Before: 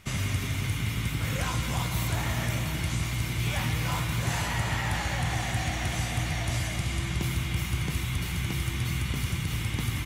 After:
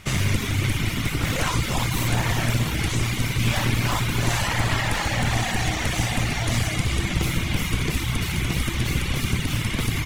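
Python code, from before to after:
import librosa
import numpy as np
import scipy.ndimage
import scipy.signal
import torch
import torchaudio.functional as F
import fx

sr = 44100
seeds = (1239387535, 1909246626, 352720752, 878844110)

p1 = np.minimum(x, 2.0 * 10.0 ** (-28.5 / 20.0) - x)
p2 = fx.peak_eq(p1, sr, hz=8500.0, db=2.5, octaves=2.6)
p3 = p2 + fx.room_flutter(p2, sr, wall_m=10.3, rt60_s=0.47, dry=0)
p4 = fx.dereverb_blind(p3, sr, rt60_s=0.7)
p5 = fx.high_shelf(p4, sr, hz=5800.0, db=-5.0)
y = p5 * 10.0 ** (8.5 / 20.0)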